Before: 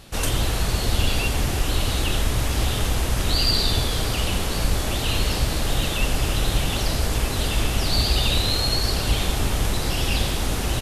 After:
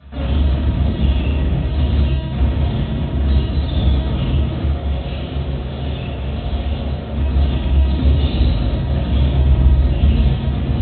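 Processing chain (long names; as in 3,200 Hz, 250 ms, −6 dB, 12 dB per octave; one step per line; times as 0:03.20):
0:04.62–0:07.17: high-pass filter 140 Hz 24 dB per octave
linear-prediction vocoder at 8 kHz pitch kept
convolution reverb RT60 1.1 s, pre-delay 3 ms, DRR −8 dB
dynamic equaliser 1,400 Hz, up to −8 dB, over −28 dBFS, Q 0.91
level −16.5 dB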